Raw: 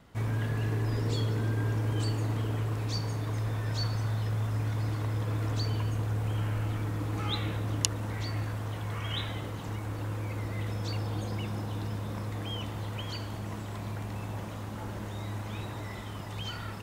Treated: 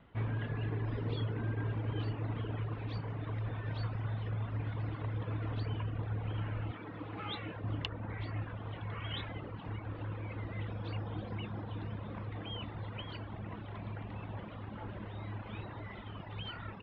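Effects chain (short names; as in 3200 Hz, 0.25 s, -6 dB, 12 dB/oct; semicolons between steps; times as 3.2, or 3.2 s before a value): 6.71–7.64 HPF 210 Hz 6 dB/oct; reverb removal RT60 0.88 s; steep low-pass 3400 Hz 36 dB/oct; gain -3 dB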